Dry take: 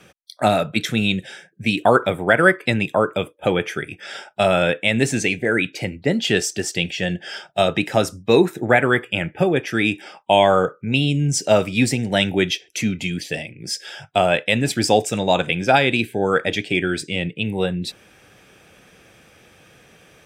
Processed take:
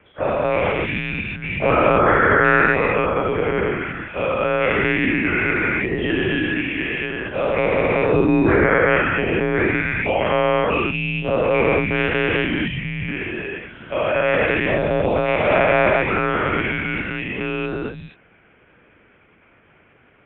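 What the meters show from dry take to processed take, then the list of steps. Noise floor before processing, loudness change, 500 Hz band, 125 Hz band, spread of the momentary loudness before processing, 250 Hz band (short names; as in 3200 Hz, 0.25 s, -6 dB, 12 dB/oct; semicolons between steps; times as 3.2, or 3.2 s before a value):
-53 dBFS, +1.0 dB, +1.0 dB, -1.0 dB, 11 LU, -0.5 dB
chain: spectral dilation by 0.48 s; monotone LPC vocoder at 8 kHz 130 Hz; mistuned SSB -100 Hz 170–2800 Hz; gain -7 dB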